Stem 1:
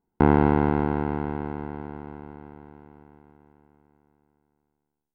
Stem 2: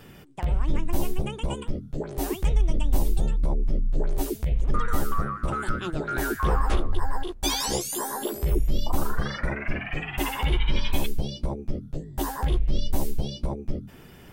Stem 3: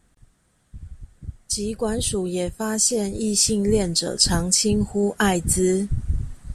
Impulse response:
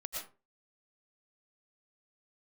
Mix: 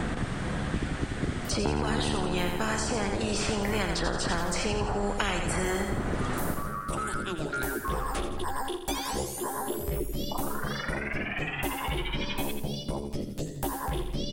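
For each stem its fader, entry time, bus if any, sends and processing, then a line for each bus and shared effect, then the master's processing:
-7.0 dB, 1.45 s, no send, no echo send, none
-15.5 dB, 1.45 s, no send, echo send -10 dB, treble shelf 11 kHz +5.5 dB
-3.5 dB, 0.00 s, no send, echo send -6 dB, low-pass 1.3 kHz 12 dB/octave; spectrum-flattening compressor 4:1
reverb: none
echo: feedback delay 84 ms, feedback 40%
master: peaking EQ 9.7 kHz +5 dB 0.63 oct; three bands compressed up and down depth 100%

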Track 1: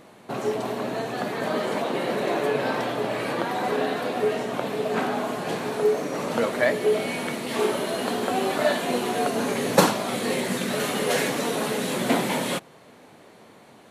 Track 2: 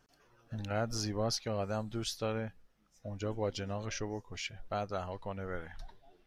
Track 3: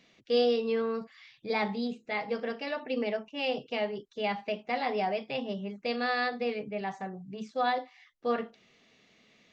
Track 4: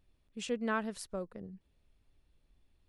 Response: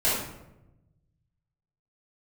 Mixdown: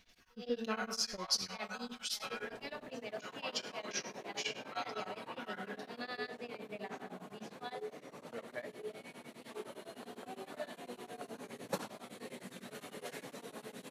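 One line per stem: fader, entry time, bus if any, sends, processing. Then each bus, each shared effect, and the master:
-20.0 dB, 1.95 s, no send, none
+1.0 dB, 0.00 s, send -15 dB, Bessel high-pass 1.4 kHz, order 8; comb 5.4 ms, depth 85%
-8.5 dB, 0.00 s, send -24 dB, compression 5:1, threshold -33 dBFS, peak gain reduction 11 dB; peaking EQ 4 kHz +7 dB 2.5 oct; attacks held to a fixed rise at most 250 dB/s
-3.0 dB, 0.00 s, no send, low-pass 1.4 kHz 12 dB/octave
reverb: on, RT60 0.90 s, pre-delay 3 ms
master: tremolo of two beating tones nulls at 9.8 Hz

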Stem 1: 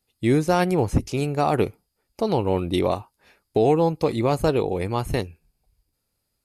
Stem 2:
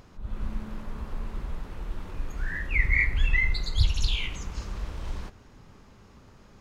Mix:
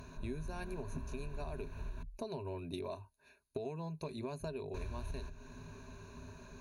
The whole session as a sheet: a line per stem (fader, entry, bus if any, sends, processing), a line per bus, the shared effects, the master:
-13.0 dB, 0.00 s, no send, none
-1.5 dB, 0.00 s, muted 2.03–4.74 s, no send, none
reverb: none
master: rippled EQ curve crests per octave 1.5, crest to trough 16 dB; compression 6:1, threshold -39 dBFS, peak gain reduction 16.5 dB

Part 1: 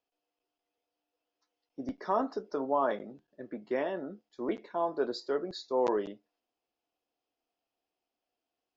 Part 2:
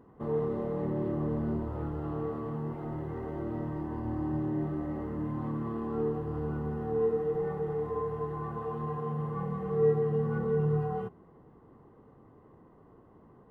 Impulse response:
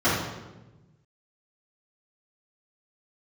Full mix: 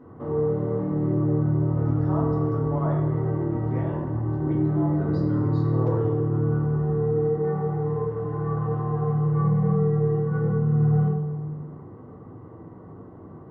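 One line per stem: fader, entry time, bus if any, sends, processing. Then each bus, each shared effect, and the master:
-11.5 dB, 0.00 s, send -12 dB, octave divider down 2 oct, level 0 dB
+2.5 dB, 0.00 s, send -11.5 dB, compression 2:1, threshold -42 dBFS, peak gain reduction 11.5 dB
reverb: on, RT60 1.1 s, pre-delay 3 ms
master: treble shelf 4 kHz -10 dB

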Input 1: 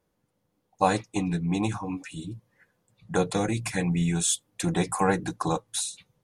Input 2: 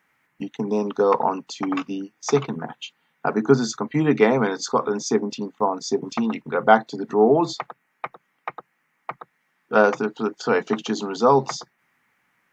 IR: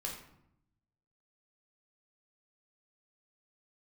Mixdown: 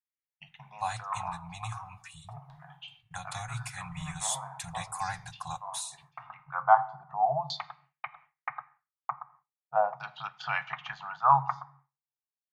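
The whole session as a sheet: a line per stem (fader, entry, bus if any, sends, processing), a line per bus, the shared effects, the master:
-5.0 dB, 0.00 s, send -19.5 dB, none
-5.5 dB, 0.00 s, send -12 dB, LFO low-pass saw down 0.4 Hz 580–4100 Hz; auto duck -15 dB, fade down 1.35 s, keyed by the first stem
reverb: on, RT60 0.75 s, pre-delay 9 ms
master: elliptic band-stop 140–750 Hz, stop band 40 dB; expander -51 dBFS; random flutter of the level, depth 50%

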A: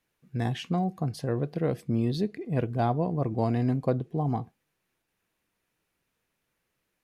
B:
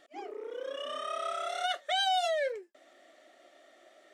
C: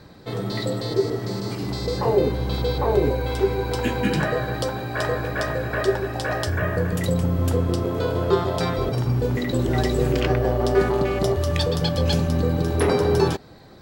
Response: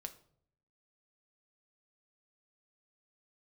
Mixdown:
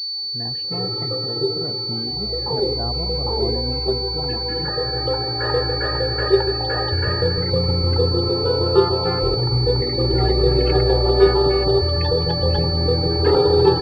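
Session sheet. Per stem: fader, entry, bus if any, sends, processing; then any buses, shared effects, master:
-4.5 dB, 0.00 s, no send, none
-17.5 dB, 0.00 s, no send, none
-1.5 dB, 0.45 s, send -6 dB, comb 2.3 ms, depth 83%; auto duck -14 dB, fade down 1.90 s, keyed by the first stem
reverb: on, RT60 0.60 s, pre-delay 6 ms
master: loudest bins only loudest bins 64; class-D stage that switches slowly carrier 4.5 kHz

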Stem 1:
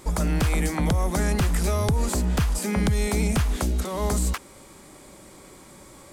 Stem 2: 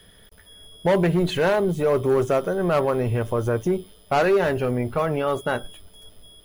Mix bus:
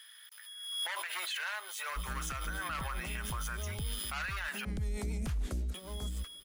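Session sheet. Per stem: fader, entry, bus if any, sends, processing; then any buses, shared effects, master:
-5.5 dB, 1.90 s, no send, bass shelf 94 Hz +10 dB; rotary cabinet horn 6.7 Hz; auto duck -13 dB, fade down 0.35 s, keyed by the second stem
0.0 dB, 0.00 s, muted 4.65–5.74 s, no send, high-pass 1.3 kHz 24 dB/octave; swell ahead of each attack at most 52 dB/s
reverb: none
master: peak limiter -28.5 dBFS, peak gain reduction 12 dB

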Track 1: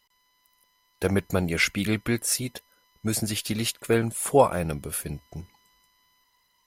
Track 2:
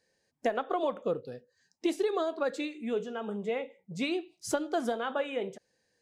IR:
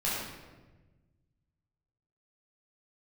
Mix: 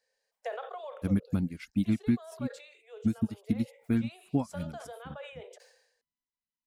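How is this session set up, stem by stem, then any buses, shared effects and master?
-5.5 dB, 0.00 s, no send, reverb removal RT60 0.57 s; resonant low shelf 340 Hz +10 dB, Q 3; upward expansion 2.5:1, over -27 dBFS
-4.5 dB, 0.00 s, no send, steep high-pass 440 Hz 72 dB/octave; band-stop 6.4 kHz, Q 25; decay stretcher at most 73 dB/s; auto duck -9 dB, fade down 0.80 s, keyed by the first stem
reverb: none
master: compression 5:1, threshold -23 dBFS, peak gain reduction 9 dB

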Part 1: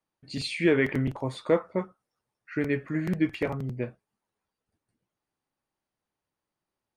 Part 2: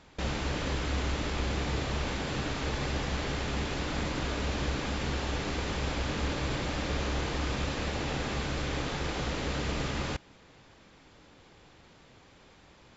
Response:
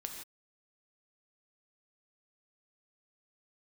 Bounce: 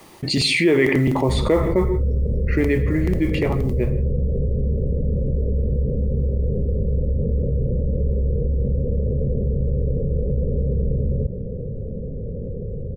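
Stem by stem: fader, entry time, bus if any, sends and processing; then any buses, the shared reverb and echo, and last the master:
2.45 s -2 dB -> 3.01 s -10 dB, 0.00 s, send -6 dB, modulation noise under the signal 34 dB; small resonant body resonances 370/2000 Hz, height 7 dB
-5.5 dB, 1.10 s, no send, steep low-pass 510 Hz 72 dB/octave; comb 1.6 ms, depth 94%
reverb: on, pre-delay 3 ms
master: peaking EQ 1.5 kHz -10 dB 0.2 oct; level flattener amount 70%

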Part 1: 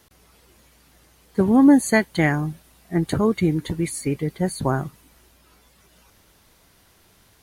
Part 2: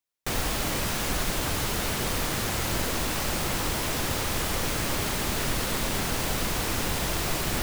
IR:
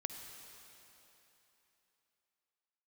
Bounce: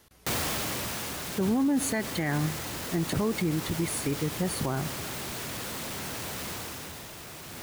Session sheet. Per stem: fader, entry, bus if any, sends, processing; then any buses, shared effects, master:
-4.0 dB, 0.00 s, send -13.5 dB, none
6.51 s -0.5 dB -> 7.08 s -8 dB, 0.00 s, send -18 dB, high-pass 75 Hz 24 dB/octave; companded quantiser 2-bit; auto duck -13 dB, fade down 1.20 s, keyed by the first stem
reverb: on, RT60 3.4 s, pre-delay 47 ms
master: peak limiter -19.5 dBFS, peak gain reduction 11.5 dB

